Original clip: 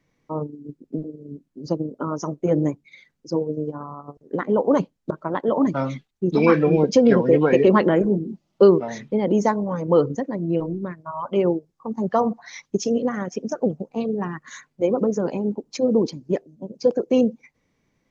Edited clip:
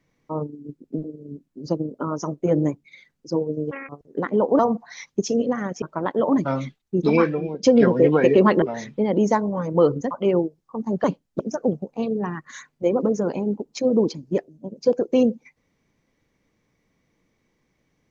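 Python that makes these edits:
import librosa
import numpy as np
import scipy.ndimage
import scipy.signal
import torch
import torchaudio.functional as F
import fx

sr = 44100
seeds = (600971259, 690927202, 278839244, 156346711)

y = fx.edit(x, sr, fx.speed_span(start_s=3.71, length_s=0.34, speed=1.89),
    fx.swap(start_s=4.75, length_s=0.36, other_s=12.15, other_length_s=1.23),
    fx.fade_out_to(start_s=6.42, length_s=0.5, curve='qua', floor_db=-14.0),
    fx.cut(start_s=7.91, length_s=0.85),
    fx.cut(start_s=10.25, length_s=0.97), tone=tone)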